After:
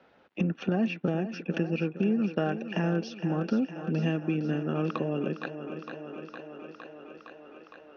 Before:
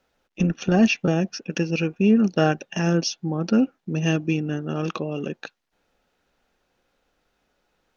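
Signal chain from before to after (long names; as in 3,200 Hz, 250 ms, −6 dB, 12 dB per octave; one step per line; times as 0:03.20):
high-pass filter 130 Hz 12 dB per octave
high-shelf EQ 6,000 Hz −10.5 dB
downward compressor 2.5 to 1, threshold −26 dBFS, peak gain reduction 9.5 dB
high-frequency loss of the air 220 metres
feedback echo with a high-pass in the loop 461 ms, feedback 70%, high-pass 210 Hz, level −11 dB
multiband upward and downward compressor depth 40%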